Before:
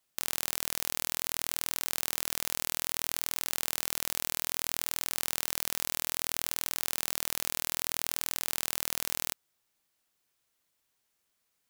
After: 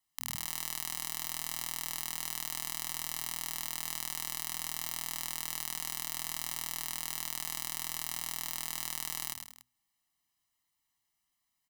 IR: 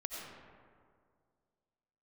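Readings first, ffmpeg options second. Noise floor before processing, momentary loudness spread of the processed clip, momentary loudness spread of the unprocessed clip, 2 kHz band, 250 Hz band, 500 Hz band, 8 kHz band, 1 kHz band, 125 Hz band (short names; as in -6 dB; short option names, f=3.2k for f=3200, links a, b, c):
-78 dBFS, 0 LU, 0 LU, -4.5 dB, -4.5 dB, -11.5 dB, -3.5 dB, -2.5 dB, -3.0 dB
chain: -af "bandreject=f=60:t=h:w=6,bandreject=f=120:t=h:w=6,bandreject=f=180:t=h:w=6,bandreject=f=240:t=h:w=6,aecho=1:1:1:0.98,aecho=1:1:105|185|288:0.501|0.211|0.141,volume=-8dB"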